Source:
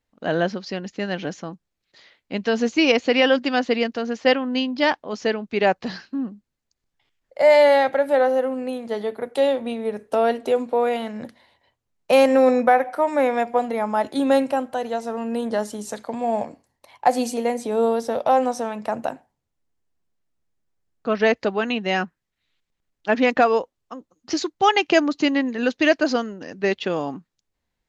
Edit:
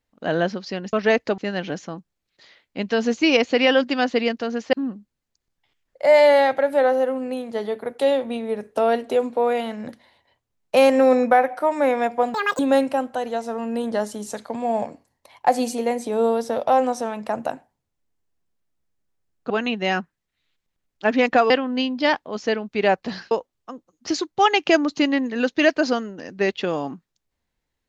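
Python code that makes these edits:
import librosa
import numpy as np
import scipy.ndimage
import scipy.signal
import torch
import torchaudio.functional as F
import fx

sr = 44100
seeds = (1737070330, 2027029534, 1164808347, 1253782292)

y = fx.edit(x, sr, fx.move(start_s=4.28, length_s=1.81, to_s=23.54),
    fx.speed_span(start_s=13.7, length_s=0.48, speed=1.91),
    fx.move(start_s=21.09, length_s=0.45, to_s=0.93), tone=tone)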